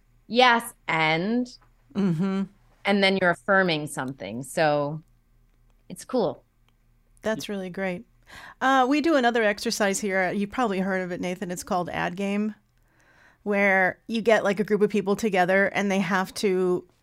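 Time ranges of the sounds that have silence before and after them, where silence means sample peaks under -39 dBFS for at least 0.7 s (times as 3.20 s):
5.90–6.34 s
7.17–12.52 s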